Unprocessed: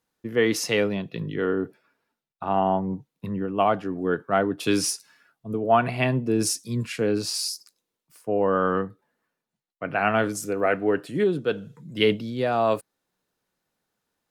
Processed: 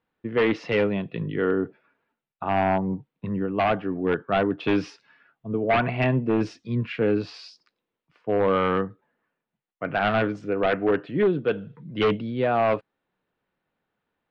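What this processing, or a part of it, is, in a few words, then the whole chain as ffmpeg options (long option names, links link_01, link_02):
synthesiser wavefolder: -af "aeval=exprs='0.168*(abs(mod(val(0)/0.168+3,4)-2)-1)':channel_layout=same,lowpass=frequency=3100:width=0.5412,lowpass=frequency=3100:width=1.3066,volume=1.5dB"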